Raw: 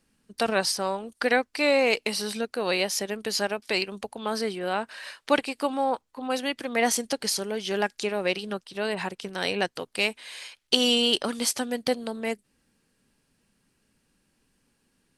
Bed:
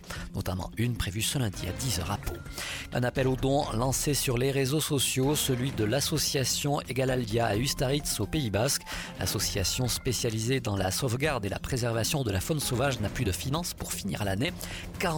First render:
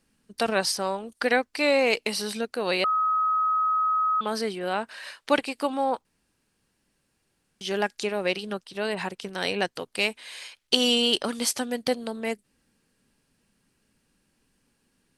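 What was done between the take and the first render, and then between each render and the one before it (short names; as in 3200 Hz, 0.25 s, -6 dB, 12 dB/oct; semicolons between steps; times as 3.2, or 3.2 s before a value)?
2.84–4.21 bleep 1270 Hz -20.5 dBFS; 6.05–7.61 room tone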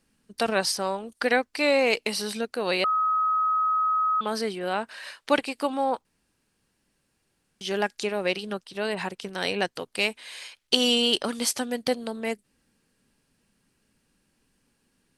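nothing audible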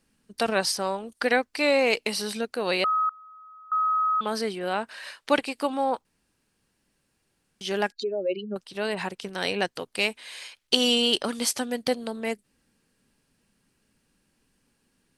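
3.09–3.72 steep high-pass 1800 Hz 48 dB/oct; 7.92–8.56 spectral contrast raised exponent 2.9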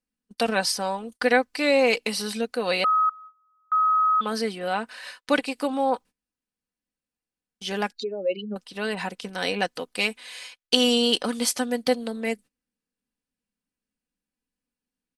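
gate -45 dBFS, range -21 dB; comb 4 ms, depth 50%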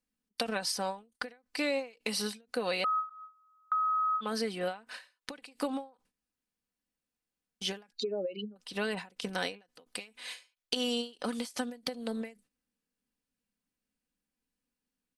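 compressor 5:1, threshold -29 dBFS, peak gain reduction 14 dB; ending taper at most 190 dB/s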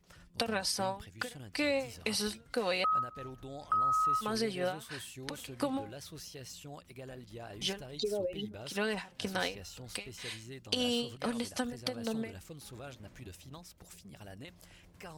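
add bed -19.5 dB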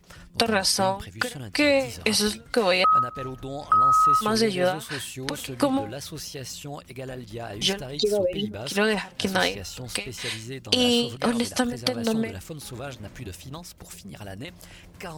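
gain +11 dB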